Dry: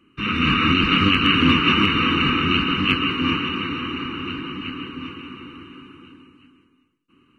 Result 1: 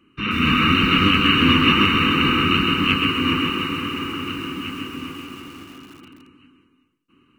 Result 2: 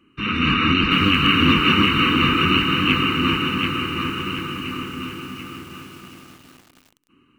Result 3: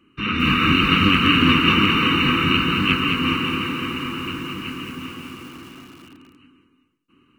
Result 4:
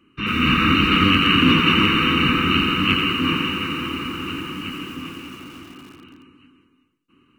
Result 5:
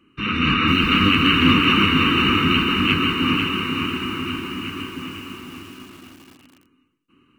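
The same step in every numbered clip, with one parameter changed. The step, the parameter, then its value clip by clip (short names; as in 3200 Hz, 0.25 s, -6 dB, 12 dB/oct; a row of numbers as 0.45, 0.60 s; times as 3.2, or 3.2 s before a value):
lo-fi delay, time: 132, 734, 216, 88, 499 ms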